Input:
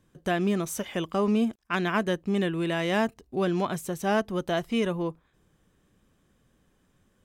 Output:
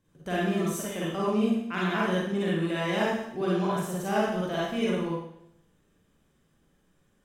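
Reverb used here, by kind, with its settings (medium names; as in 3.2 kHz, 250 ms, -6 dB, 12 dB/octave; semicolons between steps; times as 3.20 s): Schroeder reverb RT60 0.76 s, DRR -6.5 dB; trim -8 dB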